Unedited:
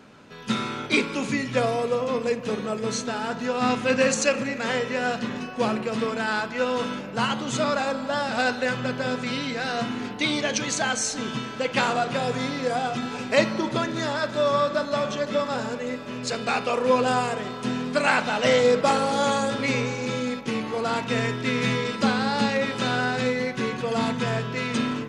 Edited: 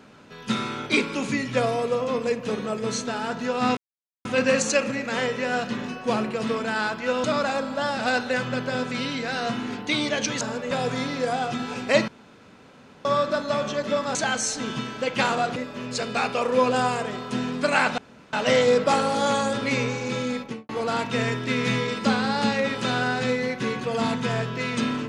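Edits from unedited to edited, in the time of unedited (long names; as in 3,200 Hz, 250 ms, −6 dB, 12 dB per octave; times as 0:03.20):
0:03.77: splice in silence 0.48 s
0:06.76–0:07.56: remove
0:10.73–0:12.14: swap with 0:15.58–0:15.88
0:13.51–0:14.48: fill with room tone
0:18.30: splice in room tone 0.35 s
0:20.36–0:20.66: fade out and dull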